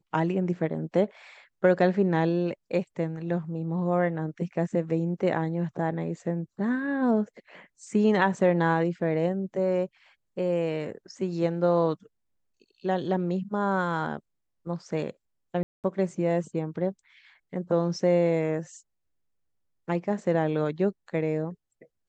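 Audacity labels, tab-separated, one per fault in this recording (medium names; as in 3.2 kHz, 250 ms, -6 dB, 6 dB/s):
15.630000	15.840000	dropout 208 ms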